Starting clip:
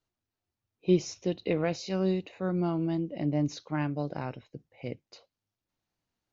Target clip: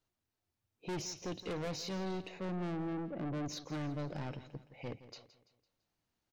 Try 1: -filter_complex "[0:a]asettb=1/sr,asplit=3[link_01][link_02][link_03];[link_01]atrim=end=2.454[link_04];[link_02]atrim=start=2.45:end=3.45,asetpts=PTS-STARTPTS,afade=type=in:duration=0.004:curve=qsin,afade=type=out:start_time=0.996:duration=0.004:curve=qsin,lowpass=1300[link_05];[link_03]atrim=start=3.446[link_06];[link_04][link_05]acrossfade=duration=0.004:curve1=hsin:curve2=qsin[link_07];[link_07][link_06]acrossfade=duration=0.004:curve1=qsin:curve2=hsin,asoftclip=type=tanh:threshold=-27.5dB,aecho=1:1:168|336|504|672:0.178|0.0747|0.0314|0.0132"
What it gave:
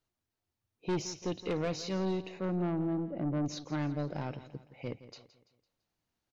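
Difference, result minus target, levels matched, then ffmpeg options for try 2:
soft clipping: distortion −5 dB
-filter_complex "[0:a]asettb=1/sr,asplit=3[link_01][link_02][link_03];[link_01]atrim=end=2.454[link_04];[link_02]atrim=start=2.45:end=3.45,asetpts=PTS-STARTPTS,afade=type=in:duration=0.004:curve=qsin,afade=type=out:start_time=0.996:duration=0.004:curve=qsin,lowpass=1300[link_05];[link_03]atrim=start=3.446[link_06];[link_04][link_05]acrossfade=duration=0.004:curve1=hsin:curve2=qsin[link_07];[link_07][link_06]acrossfade=duration=0.004:curve1=qsin:curve2=hsin,asoftclip=type=tanh:threshold=-36dB,aecho=1:1:168|336|504|672:0.178|0.0747|0.0314|0.0132"

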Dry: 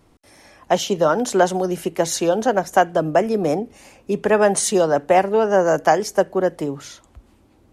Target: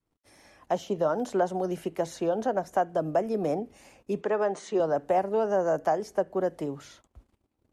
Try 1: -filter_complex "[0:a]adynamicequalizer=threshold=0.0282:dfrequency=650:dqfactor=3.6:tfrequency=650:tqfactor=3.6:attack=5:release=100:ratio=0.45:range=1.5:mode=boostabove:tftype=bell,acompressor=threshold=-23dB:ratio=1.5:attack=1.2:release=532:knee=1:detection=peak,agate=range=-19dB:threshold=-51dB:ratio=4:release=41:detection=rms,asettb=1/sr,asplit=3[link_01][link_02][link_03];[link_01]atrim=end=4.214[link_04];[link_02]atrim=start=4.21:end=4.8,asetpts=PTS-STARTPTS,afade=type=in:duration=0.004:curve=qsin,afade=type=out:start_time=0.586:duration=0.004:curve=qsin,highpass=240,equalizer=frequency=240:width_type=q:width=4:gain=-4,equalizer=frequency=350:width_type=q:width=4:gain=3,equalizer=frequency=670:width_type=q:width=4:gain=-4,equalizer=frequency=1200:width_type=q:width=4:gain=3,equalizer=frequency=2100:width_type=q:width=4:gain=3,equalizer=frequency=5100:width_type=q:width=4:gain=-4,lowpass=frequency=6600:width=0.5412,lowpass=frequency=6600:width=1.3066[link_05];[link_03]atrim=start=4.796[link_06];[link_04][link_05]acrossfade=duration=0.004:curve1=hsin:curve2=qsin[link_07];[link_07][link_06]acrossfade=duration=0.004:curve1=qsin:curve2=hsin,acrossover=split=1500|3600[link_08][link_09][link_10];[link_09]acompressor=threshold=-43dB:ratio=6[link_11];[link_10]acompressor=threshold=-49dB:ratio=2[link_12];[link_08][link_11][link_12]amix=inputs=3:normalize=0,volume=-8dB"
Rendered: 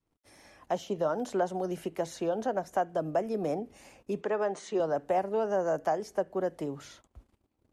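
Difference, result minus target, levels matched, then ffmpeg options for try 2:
downward compressor: peak gain reduction +3.5 dB
-filter_complex "[0:a]adynamicequalizer=threshold=0.0282:dfrequency=650:dqfactor=3.6:tfrequency=650:tqfactor=3.6:attack=5:release=100:ratio=0.45:range=1.5:mode=boostabove:tftype=bell,acompressor=threshold=-13dB:ratio=1.5:attack=1.2:release=532:knee=1:detection=peak,agate=range=-19dB:threshold=-51dB:ratio=4:release=41:detection=rms,asettb=1/sr,asplit=3[link_01][link_02][link_03];[link_01]atrim=end=4.214[link_04];[link_02]atrim=start=4.21:end=4.8,asetpts=PTS-STARTPTS,afade=type=in:duration=0.004:curve=qsin,afade=type=out:start_time=0.586:duration=0.004:curve=qsin,highpass=240,equalizer=frequency=240:width_type=q:width=4:gain=-4,equalizer=frequency=350:width_type=q:width=4:gain=3,equalizer=frequency=670:width_type=q:width=4:gain=-4,equalizer=frequency=1200:width_type=q:width=4:gain=3,equalizer=frequency=2100:width_type=q:width=4:gain=3,equalizer=frequency=5100:width_type=q:width=4:gain=-4,lowpass=frequency=6600:width=0.5412,lowpass=frequency=6600:width=1.3066[link_05];[link_03]atrim=start=4.796[link_06];[link_04][link_05]acrossfade=duration=0.004:curve1=hsin:curve2=qsin[link_07];[link_07][link_06]acrossfade=duration=0.004:curve1=qsin:curve2=hsin,acrossover=split=1500|3600[link_08][link_09][link_10];[link_09]acompressor=threshold=-43dB:ratio=6[link_11];[link_10]acompressor=threshold=-49dB:ratio=2[link_12];[link_08][link_11][link_12]amix=inputs=3:normalize=0,volume=-8dB"

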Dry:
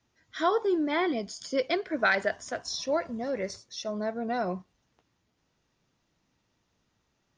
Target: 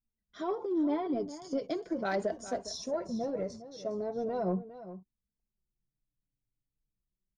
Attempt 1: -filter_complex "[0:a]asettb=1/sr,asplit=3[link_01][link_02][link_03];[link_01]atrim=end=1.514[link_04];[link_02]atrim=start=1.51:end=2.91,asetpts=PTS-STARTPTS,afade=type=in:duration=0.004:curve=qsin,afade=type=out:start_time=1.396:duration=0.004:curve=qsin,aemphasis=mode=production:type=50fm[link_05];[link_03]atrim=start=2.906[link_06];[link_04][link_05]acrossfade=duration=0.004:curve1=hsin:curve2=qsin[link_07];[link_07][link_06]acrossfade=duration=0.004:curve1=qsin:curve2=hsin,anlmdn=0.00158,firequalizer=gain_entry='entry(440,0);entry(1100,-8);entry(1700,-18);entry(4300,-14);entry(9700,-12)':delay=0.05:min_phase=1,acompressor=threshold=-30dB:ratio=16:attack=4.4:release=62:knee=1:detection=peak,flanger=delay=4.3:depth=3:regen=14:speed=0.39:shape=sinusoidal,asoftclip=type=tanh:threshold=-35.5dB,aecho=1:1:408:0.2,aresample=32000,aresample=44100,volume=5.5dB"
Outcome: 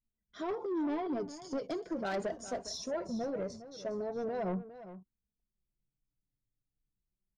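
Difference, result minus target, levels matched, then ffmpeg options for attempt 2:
soft clipping: distortion +15 dB
-filter_complex "[0:a]asettb=1/sr,asplit=3[link_01][link_02][link_03];[link_01]atrim=end=1.514[link_04];[link_02]atrim=start=1.51:end=2.91,asetpts=PTS-STARTPTS,afade=type=in:duration=0.004:curve=qsin,afade=type=out:start_time=1.396:duration=0.004:curve=qsin,aemphasis=mode=production:type=50fm[link_05];[link_03]atrim=start=2.906[link_06];[link_04][link_05]acrossfade=duration=0.004:curve1=hsin:curve2=qsin[link_07];[link_07][link_06]acrossfade=duration=0.004:curve1=qsin:curve2=hsin,anlmdn=0.00158,firequalizer=gain_entry='entry(440,0);entry(1100,-8);entry(1700,-18);entry(4300,-14);entry(9700,-12)':delay=0.05:min_phase=1,acompressor=threshold=-30dB:ratio=16:attack=4.4:release=62:knee=1:detection=peak,flanger=delay=4.3:depth=3:regen=14:speed=0.39:shape=sinusoidal,asoftclip=type=tanh:threshold=-25dB,aecho=1:1:408:0.2,aresample=32000,aresample=44100,volume=5.5dB"

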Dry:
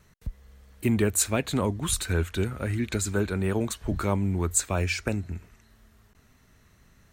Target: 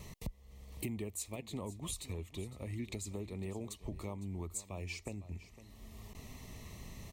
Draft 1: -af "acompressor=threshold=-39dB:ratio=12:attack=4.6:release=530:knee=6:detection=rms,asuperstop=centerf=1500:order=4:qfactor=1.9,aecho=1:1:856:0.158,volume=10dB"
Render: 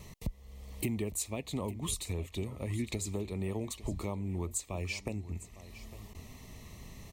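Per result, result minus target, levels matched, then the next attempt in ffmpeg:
echo 349 ms late; downward compressor: peak gain reduction −6 dB
-af "acompressor=threshold=-39dB:ratio=12:attack=4.6:release=530:knee=6:detection=rms,asuperstop=centerf=1500:order=4:qfactor=1.9,aecho=1:1:507:0.158,volume=10dB"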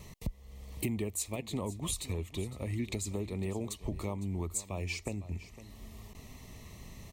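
downward compressor: peak gain reduction −6 dB
-af "acompressor=threshold=-45.5dB:ratio=12:attack=4.6:release=530:knee=6:detection=rms,asuperstop=centerf=1500:order=4:qfactor=1.9,aecho=1:1:507:0.158,volume=10dB"

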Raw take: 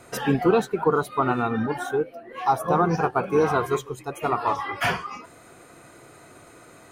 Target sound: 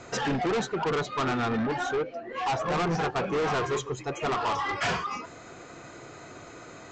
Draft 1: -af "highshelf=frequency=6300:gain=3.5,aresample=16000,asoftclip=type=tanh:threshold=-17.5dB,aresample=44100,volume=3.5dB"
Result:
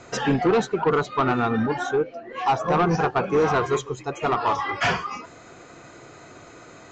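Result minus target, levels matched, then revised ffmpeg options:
soft clipping: distortion −8 dB
-af "highshelf=frequency=6300:gain=3.5,aresample=16000,asoftclip=type=tanh:threshold=-28dB,aresample=44100,volume=3.5dB"

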